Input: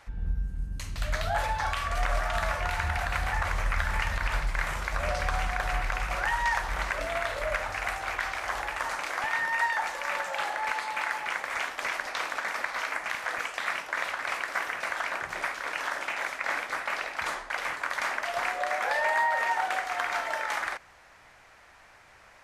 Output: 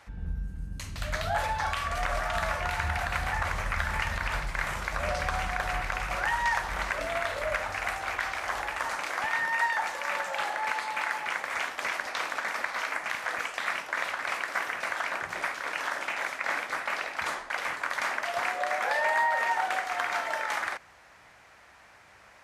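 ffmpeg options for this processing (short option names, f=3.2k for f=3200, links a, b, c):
-af "highpass=52,equalizer=f=210:t=o:w=0.77:g=2"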